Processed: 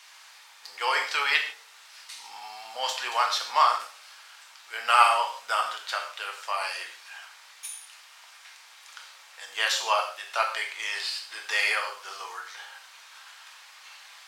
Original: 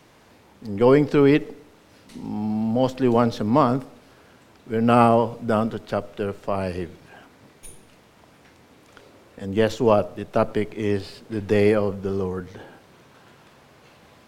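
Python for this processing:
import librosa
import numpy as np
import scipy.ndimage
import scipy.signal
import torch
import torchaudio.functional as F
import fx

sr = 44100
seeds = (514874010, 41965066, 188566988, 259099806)

y = scipy.signal.sosfilt(scipy.signal.butter(4, 960.0, 'highpass', fs=sr, output='sos'), x)
y = fx.peak_eq(y, sr, hz=5500.0, db=8.5, octaves=2.7)
y = fx.rev_gated(y, sr, seeds[0], gate_ms=180, shape='falling', drr_db=1.0)
y = fx.end_taper(y, sr, db_per_s=210.0)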